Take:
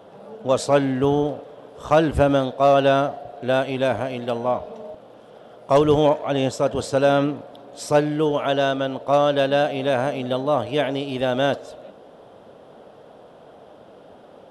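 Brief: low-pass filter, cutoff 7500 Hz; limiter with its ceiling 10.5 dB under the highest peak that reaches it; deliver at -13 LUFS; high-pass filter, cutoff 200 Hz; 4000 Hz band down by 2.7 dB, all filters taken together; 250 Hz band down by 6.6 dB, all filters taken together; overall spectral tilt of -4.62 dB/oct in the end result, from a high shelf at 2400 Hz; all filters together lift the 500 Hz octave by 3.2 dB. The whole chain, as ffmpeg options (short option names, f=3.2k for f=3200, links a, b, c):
-af "highpass=200,lowpass=7.5k,equalizer=f=250:t=o:g=-8.5,equalizer=f=500:t=o:g=5.5,highshelf=f=2.4k:g=4.5,equalizer=f=4k:t=o:g=-7.5,volume=11dB,alimiter=limit=-2.5dB:level=0:latency=1"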